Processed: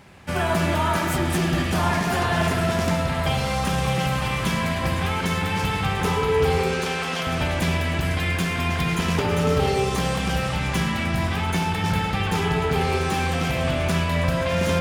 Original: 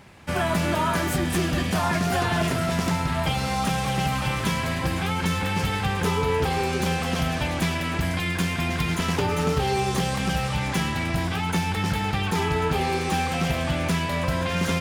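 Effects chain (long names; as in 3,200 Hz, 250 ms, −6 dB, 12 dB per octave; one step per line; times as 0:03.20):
0:06.71–0:07.27: meter weighting curve A
spring reverb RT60 1.8 s, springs 59 ms, chirp 70 ms, DRR 2.5 dB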